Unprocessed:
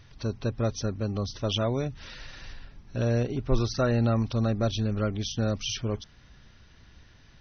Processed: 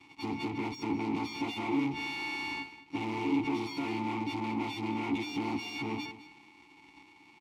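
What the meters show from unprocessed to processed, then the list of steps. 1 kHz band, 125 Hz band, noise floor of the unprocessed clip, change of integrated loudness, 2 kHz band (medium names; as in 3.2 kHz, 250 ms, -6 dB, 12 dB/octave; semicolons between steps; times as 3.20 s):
+2.5 dB, -16.5 dB, -55 dBFS, -5.5 dB, +4.5 dB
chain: partials quantised in pitch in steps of 4 st; gate -41 dBFS, range -10 dB; high-pass 64 Hz 12 dB/octave; fuzz box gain 51 dB, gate -60 dBFS; vowel filter u; on a send: delay 207 ms -15 dB; on the sum: trim -5 dB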